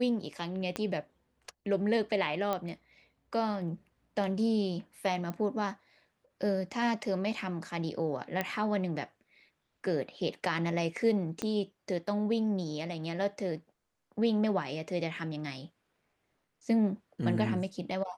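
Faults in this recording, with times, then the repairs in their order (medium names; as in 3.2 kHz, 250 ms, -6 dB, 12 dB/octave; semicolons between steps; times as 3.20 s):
0.76 s: pop -18 dBFS
2.53 s: pop -18 dBFS
5.30 s: pop -24 dBFS
8.41 s: pop -16 dBFS
11.42 s: pop -19 dBFS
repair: de-click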